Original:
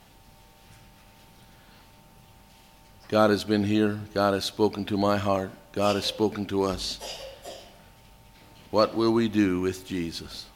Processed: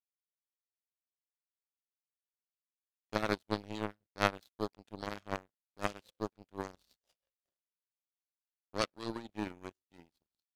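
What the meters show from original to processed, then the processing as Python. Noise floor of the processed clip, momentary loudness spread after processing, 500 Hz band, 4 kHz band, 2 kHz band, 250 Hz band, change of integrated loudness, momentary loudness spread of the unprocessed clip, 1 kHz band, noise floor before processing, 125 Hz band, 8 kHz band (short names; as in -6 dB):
under -85 dBFS, 11 LU, -15.5 dB, -13.5 dB, -7.0 dB, -17.0 dB, -13.0 dB, 13 LU, -11.0 dB, -54 dBFS, -14.5 dB, -13.5 dB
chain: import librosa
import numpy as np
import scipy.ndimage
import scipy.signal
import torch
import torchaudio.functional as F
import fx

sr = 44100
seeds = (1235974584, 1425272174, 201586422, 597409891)

y = fx.rotary(x, sr, hz=6.3)
y = fx.power_curve(y, sr, exponent=3.0)
y = F.gain(torch.from_numpy(y), 3.0).numpy()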